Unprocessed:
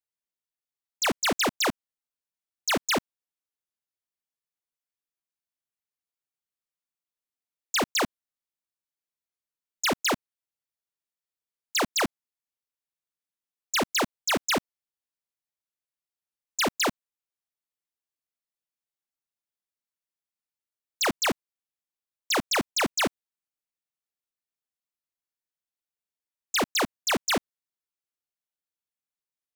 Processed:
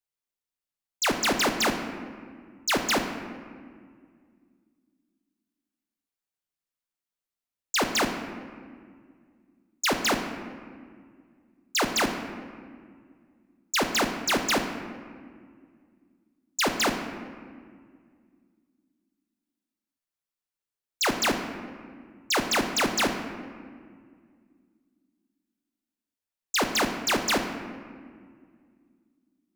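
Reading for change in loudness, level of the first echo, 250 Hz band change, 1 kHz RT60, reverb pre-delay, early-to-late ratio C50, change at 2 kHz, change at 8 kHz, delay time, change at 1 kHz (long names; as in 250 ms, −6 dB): 0.0 dB, no echo audible, +2.5 dB, 1.8 s, 3 ms, 7.0 dB, +1.5 dB, +0.5 dB, no echo audible, +1.5 dB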